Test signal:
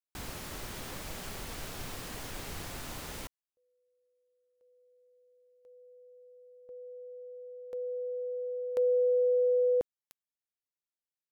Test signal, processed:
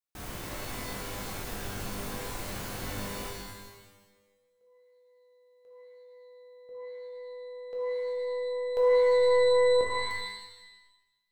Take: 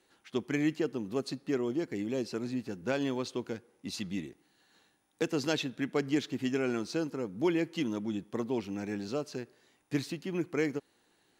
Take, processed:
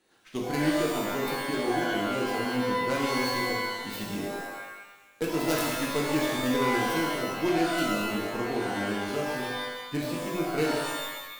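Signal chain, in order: tracing distortion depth 0.49 ms; shimmer reverb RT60 1 s, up +12 st, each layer -2 dB, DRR -2.5 dB; gain -2 dB

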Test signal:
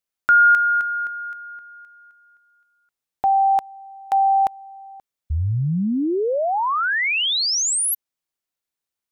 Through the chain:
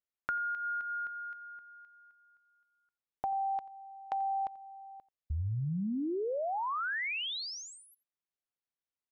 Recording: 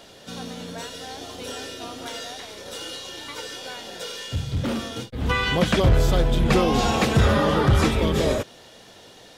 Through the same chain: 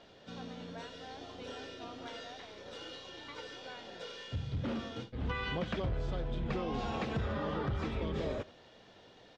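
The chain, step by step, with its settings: compressor 12:1, threshold -22 dBFS; air absorption 170 m; on a send: echo 87 ms -20.5 dB; on the sum: gain -9 dB

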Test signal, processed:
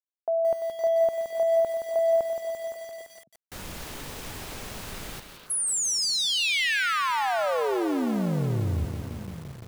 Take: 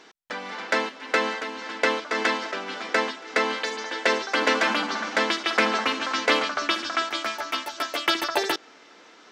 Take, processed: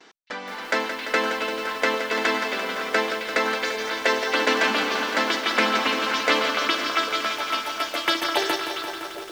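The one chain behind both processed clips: gate with hold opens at -41 dBFS; delay with a stepping band-pass 0.266 s, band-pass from 3200 Hz, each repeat -1.4 oct, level -5 dB; lo-fi delay 0.171 s, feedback 80%, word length 7-bit, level -8 dB

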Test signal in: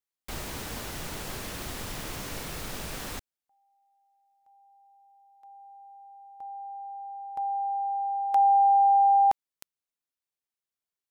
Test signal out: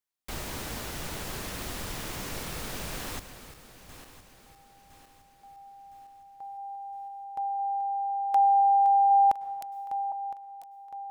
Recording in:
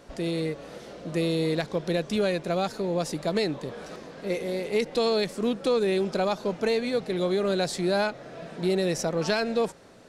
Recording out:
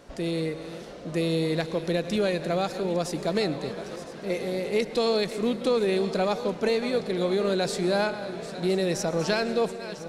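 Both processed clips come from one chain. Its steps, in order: regenerating reverse delay 0.506 s, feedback 62%, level -13 dB; plate-style reverb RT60 1.3 s, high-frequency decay 0.9×, pre-delay 90 ms, DRR 15.5 dB

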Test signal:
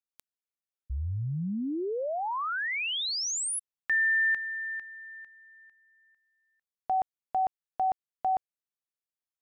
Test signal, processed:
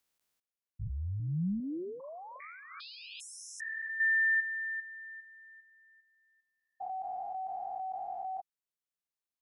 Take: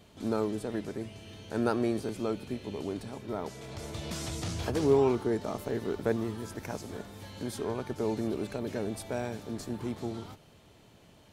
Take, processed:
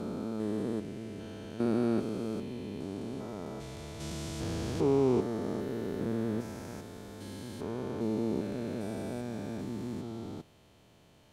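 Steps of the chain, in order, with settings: stepped spectrum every 0.4 s; dynamic EQ 210 Hz, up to +5 dB, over -45 dBFS, Q 1.1; gain -1.5 dB

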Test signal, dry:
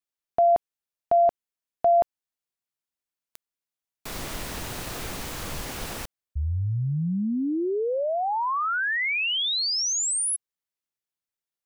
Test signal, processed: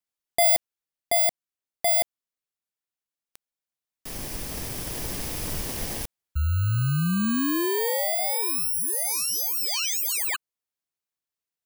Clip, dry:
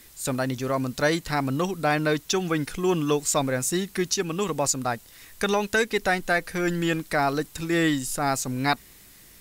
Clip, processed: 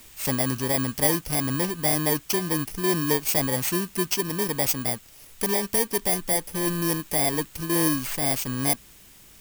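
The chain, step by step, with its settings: FFT order left unsorted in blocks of 32 samples; vocal rider within 3 dB 2 s

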